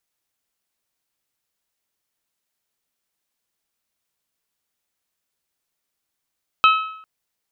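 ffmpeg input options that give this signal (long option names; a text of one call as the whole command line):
ffmpeg -f lavfi -i "aevalsrc='0.376*pow(10,-3*t/0.68)*sin(2*PI*1290*t)+0.2*pow(10,-3*t/0.552)*sin(2*PI*2580*t)+0.106*pow(10,-3*t/0.523)*sin(2*PI*3096*t)+0.0562*pow(10,-3*t/0.489)*sin(2*PI*3870*t)':duration=0.4:sample_rate=44100" out.wav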